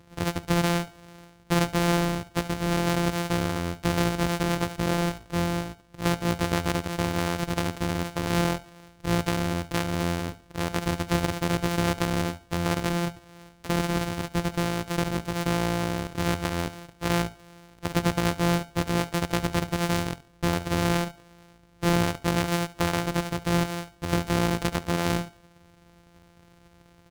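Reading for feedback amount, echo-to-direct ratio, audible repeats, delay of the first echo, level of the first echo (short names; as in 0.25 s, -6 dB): 32%, -18.0 dB, 2, 71 ms, -18.5 dB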